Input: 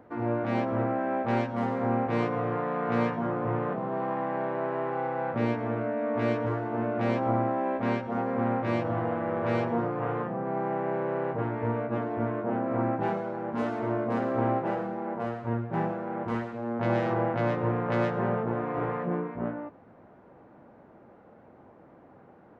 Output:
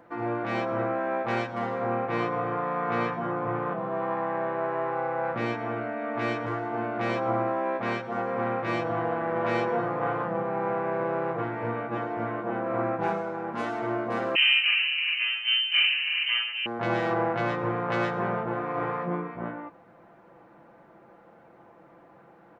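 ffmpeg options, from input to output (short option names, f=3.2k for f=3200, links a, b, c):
-filter_complex "[0:a]asettb=1/sr,asplit=3[a][b][c];[a]atrim=end=1.584[d];[b]atrim=start=1.58:end=5.24,asetpts=PTS-STARTPTS,afade=t=in:d=0.004:c=qsin,afade=t=out:st=3.656:d=0.004:c=qsin,lowpass=f=3.7k:p=1[e];[c]atrim=start=5.236[f];[d][e]acrossfade=d=0.004:c1=hsin:c2=qsin[g];[g][f]acrossfade=d=0.004:c1=qsin:c2=hsin,asplit=2[h][i];[i]afade=t=in:st=9.02:d=0.01,afade=t=out:st=9.43:d=0.01,aecho=0:1:330|660|990|1320|1650|1980|2310|2640|2970|3300|3630|3960:0.562341|0.47799|0.406292|0.345348|0.293546|0.249514|0.212087|0.180274|0.153233|0.130248|0.110711|0.094104[j];[h][j]amix=inputs=2:normalize=0,asettb=1/sr,asplit=3[k][l][m];[k]atrim=end=14.354[n];[l]atrim=start=14.35:end=16.66,asetpts=PTS-STARTPTS,afade=t=in:d=0.004:c=qsin,afade=t=out:st=2.306:d=0.004:c=qsin,lowpass=f=2.7k:t=q:w=0.5098,lowpass=f=2.7k:t=q:w=0.6013,lowpass=f=2.7k:t=q:w=0.9,lowpass=f=2.7k:t=q:w=2.563,afreqshift=-3200[o];[m]atrim=start=16.656[p];[n][o]acrossfade=d=0.004:c1=hsin:c2=qsin[q];[q][p]acrossfade=d=0.004:c1=qsin:c2=hsin,tiltshelf=f=680:g=-4.5,aecho=1:1:5.9:0.53"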